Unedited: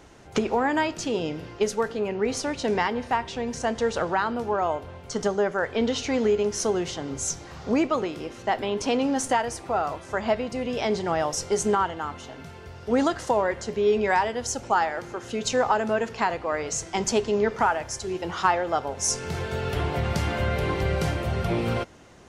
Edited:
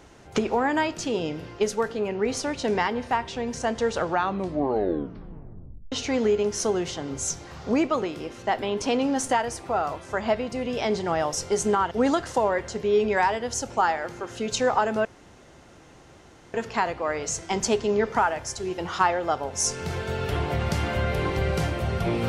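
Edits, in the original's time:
4.04 s: tape stop 1.88 s
11.91–12.84 s: delete
15.98 s: insert room tone 1.49 s

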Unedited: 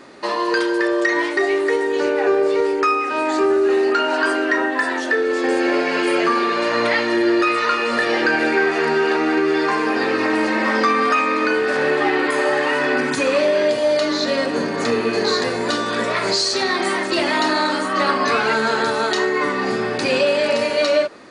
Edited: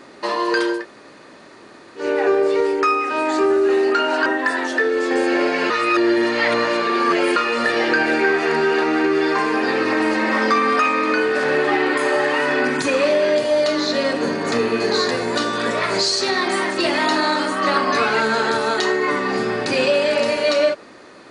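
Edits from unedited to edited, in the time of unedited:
0.78–2.03 s: room tone, crossfade 0.16 s
4.26–4.59 s: delete
6.03–7.69 s: reverse

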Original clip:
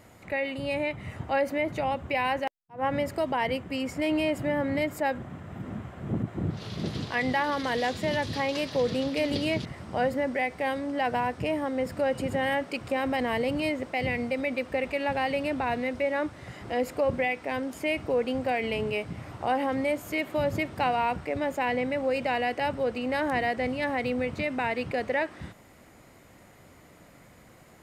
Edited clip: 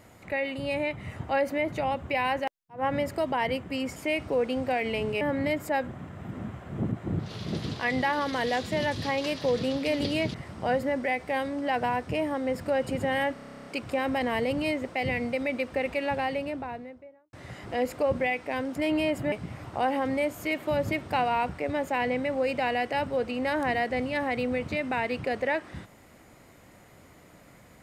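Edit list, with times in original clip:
3.96–4.52 s: swap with 17.74–18.99 s
12.64 s: stutter 0.03 s, 12 plays
14.95–16.31 s: studio fade out

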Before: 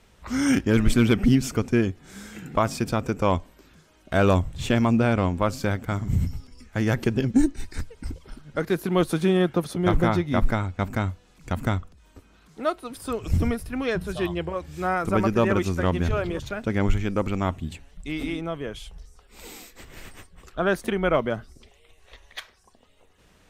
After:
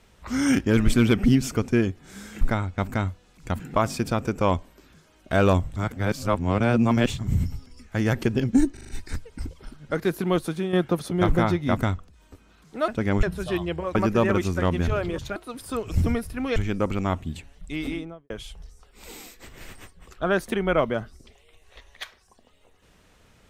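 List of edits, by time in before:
4.57–6.00 s: reverse
7.54 s: stutter 0.04 s, 5 plays
8.85–9.38 s: fade out, to -10 dB
10.42–11.61 s: move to 2.41 s
12.72–13.92 s: swap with 16.57–16.92 s
14.64–15.16 s: delete
18.21–18.66 s: studio fade out

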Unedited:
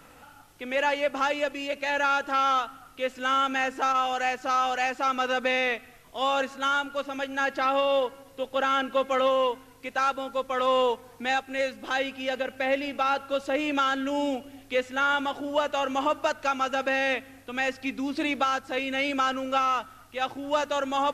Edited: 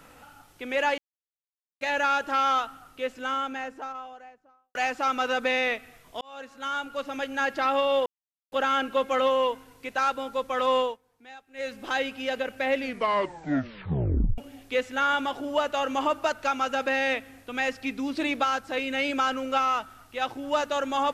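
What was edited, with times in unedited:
0.98–1.81 s: mute
2.57–4.75 s: studio fade out
6.21–7.14 s: fade in
8.06–8.52 s: mute
10.77–11.74 s: dip -20 dB, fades 0.21 s
12.74 s: tape stop 1.64 s

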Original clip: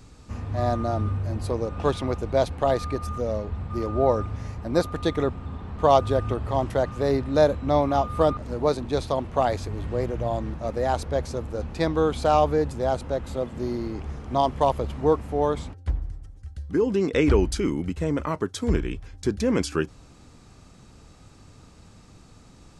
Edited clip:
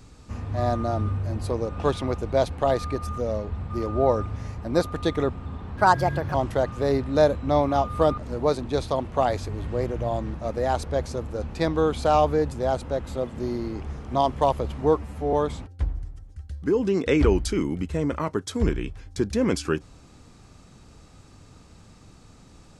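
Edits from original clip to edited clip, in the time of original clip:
5.77–6.54 s: speed 134%
15.15–15.40 s: stretch 1.5×

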